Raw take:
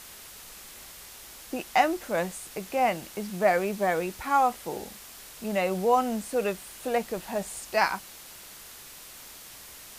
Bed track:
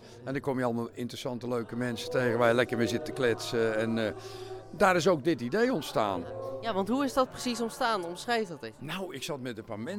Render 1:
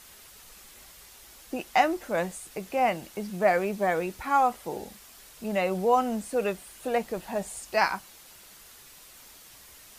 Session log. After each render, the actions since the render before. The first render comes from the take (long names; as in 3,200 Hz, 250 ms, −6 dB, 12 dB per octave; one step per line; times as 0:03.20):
broadband denoise 6 dB, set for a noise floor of −47 dBFS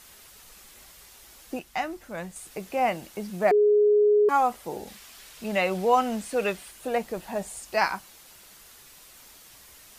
0:01.59–0:02.36: drawn EQ curve 120 Hz 0 dB, 500 Hz −10 dB, 1,300 Hz −6 dB
0:03.51–0:04.29: beep over 417 Hz −16 dBFS
0:04.87–0:06.71: parametric band 2,800 Hz +6 dB 2.4 octaves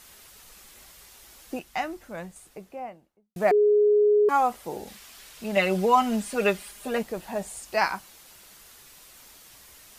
0:01.81–0:03.36: fade out and dull
0:05.56–0:07.03: comb filter 4.9 ms, depth 79%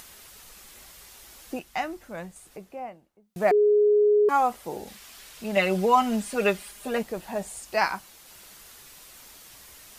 upward compression, threshold −43 dBFS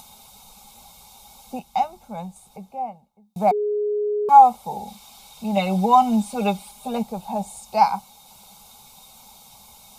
phaser with its sweep stopped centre 760 Hz, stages 4
hollow resonant body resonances 220/820/2,200/3,700 Hz, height 15 dB, ringing for 30 ms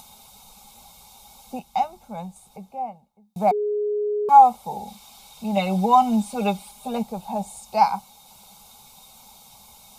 level −1 dB